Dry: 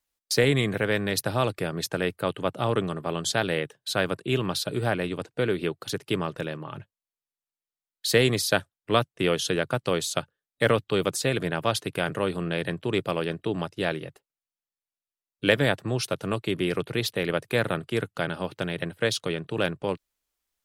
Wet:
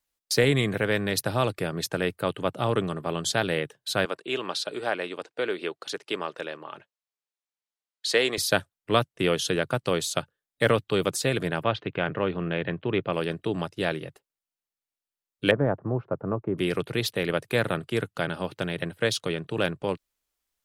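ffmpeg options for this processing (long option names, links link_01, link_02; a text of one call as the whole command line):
ffmpeg -i in.wav -filter_complex "[0:a]asettb=1/sr,asplit=3[link_01][link_02][link_03];[link_01]atrim=end=4.054[link_04];[link_02]atrim=start=4.05:end=8.38,asetpts=PTS-STARTPTS,afade=type=in:duration=0.004:curve=qsin,afade=type=out:start_time=4.326:duration=0.004:curve=qsin,highpass=410,lowpass=7400[link_05];[link_03]atrim=start=8.376[link_06];[link_04][link_05]acrossfade=duration=0.004:curve1=hsin:curve2=qsin[link_07];[link_07][link_06]acrossfade=duration=0.004:curve1=qsin:curve2=hsin,asplit=3[link_08][link_09][link_10];[link_08]afade=type=out:start_time=11.62:duration=0.02[link_11];[link_09]lowpass=frequency=3200:width=0.5412,lowpass=frequency=3200:width=1.3066,afade=type=in:start_time=11.62:duration=0.02,afade=type=out:start_time=13.12:duration=0.02[link_12];[link_10]afade=type=in:start_time=13.12:duration=0.02[link_13];[link_11][link_12][link_13]amix=inputs=3:normalize=0,asettb=1/sr,asplit=3[link_14][link_15][link_16];[link_14]atrim=end=15.514[link_17];[link_15]atrim=start=15.51:end=16.58,asetpts=PTS-STARTPTS,afade=type=in:duration=0.004:curve=qsin,afade=type=out:start_time=1.066:duration=0.004:curve=qsin,lowpass=frequency=1200:width=0.5412,lowpass=frequency=1200:width=1.3066[link_18];[link_16]atrim=start=16.576[link_19];[link_17][link_18]acrossfade=duration=0.004:curve1=hsin:curve2=qsin[link_20];[link_20][link_19]acrossfade=duration=0.004:curve1=qsin:curve2=hsin" out.wav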